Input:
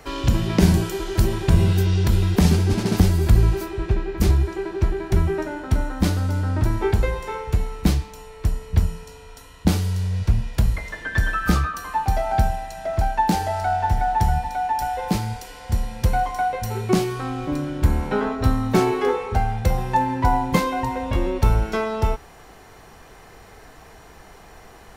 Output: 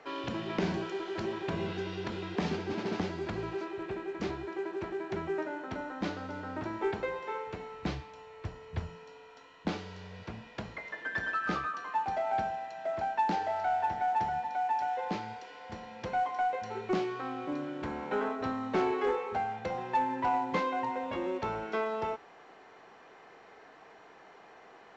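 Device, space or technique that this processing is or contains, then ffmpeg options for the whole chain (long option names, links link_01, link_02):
telephone: -filter_complex "[0:a]asettb=1/sr,asplit=3[link_01][link_02][link_03];[link_01]atrim=end=7.744[link_04];[link_02]atrim=start=7.74:end=8.95,asetpts=PTS-STARTPTS,afade=type=in:duration=0.004:curve=qsin,afade=type=out:start_time=1.206:duration=0.004:curve=qsin,lowshelf=frequency=150:width_type=q:width=1.5:gain=9[link_05];[link_03]atrim=start=8.946[link_06];[link_04][link_05]acrossfade=duration=0.004:curve1=hsin:curve2=qsin[link_07];[link_07][link_06]acrossfade=duration=0.004:curve1=qsin:curve2=hsin,highpass=300,lowpass=3100,asoftclip=type=tanh:threshold=-14dB,volume=-6.5dB" -ar 16000 -c:a pcm_mulaw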